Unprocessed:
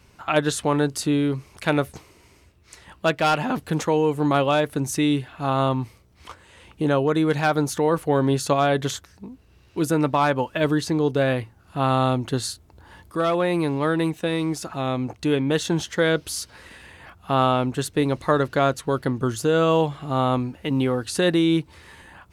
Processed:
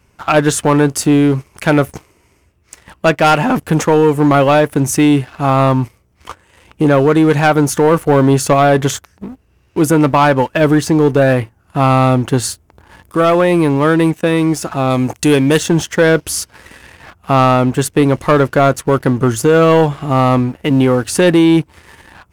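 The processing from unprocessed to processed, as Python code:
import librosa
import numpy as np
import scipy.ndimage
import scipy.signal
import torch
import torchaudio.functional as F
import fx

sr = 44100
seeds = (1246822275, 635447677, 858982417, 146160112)

y = fx.peak_eq(x, sr, hz=11000.0, db=13.5, octaves=2.3, at=(14.9, 15.58))
y = fx.peak_eq(y, sr, hz=4000.0, db=-8.5, octaves=0.55)
y = fx.leveller(y, sr, passes=2)
y = y * 10.0 ** (4.0 / 20.0)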